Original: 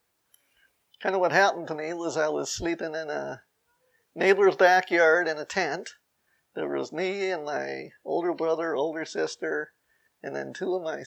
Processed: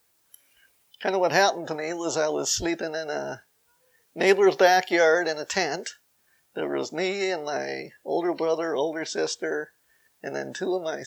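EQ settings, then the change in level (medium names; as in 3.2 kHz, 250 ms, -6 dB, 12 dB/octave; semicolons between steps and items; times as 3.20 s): dynamic bell 1.5 kHz, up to -5 dB, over -36 dBFS, Q 1.5; treble shelf 3.9 kHz +8.5 dB; +1.5 dB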